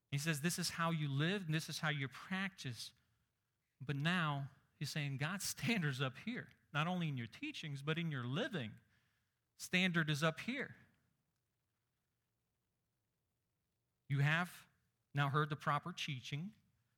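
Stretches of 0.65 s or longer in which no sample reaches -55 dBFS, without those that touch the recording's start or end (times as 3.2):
2.89–3.81
8.78–9.6
10.75–14.1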